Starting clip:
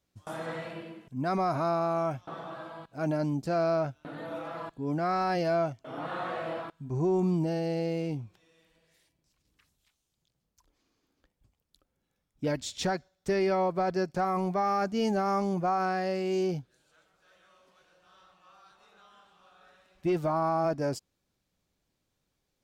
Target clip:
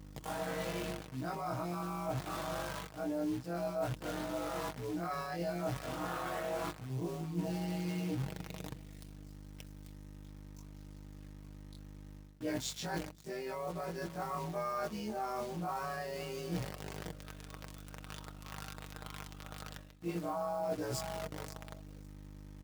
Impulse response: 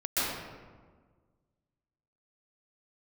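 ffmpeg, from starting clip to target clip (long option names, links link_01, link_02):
-af "afftfilt=real='re':imag='-im':win_size=2048:overlap=0.75,tremolo=f=130:d=0.462,aeval=exprs='val(0)+0.002*(sin(2*PI*50*n/s)+sin(2*PI*2*50*n/s)/2+sin(2*PI*3*50*n/s)/3+sin(2*PI*4*50*n/s)/4+sin(2*PI*5*50*n/s)/5)':channel_layout=same,aecho=1:1:541|1082:0.0891|0.0169,acrusher=bits=9:dc=4:mix=0:aa=0.000001,areverse,acompressor=threshold=-47dB:ratio=10,areverse,highpass=frequency=49:width=0.5412,highpass=frequency=49:width=1.3066,aecho=1:1:6.4:0.42,bandreject=frequency=163.9:width_type=h:width=4,bandreject=frequency=327.8:width_type=h:width=4,bandreject=frequency=491.7:width_type=h:width=4,volume=11.5dB"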